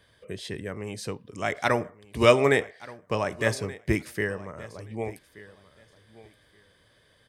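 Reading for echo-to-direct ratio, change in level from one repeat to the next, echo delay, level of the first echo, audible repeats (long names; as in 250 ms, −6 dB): −19.0 dB, −15.0 dB, 1,176 ms, −19.0 dB, 2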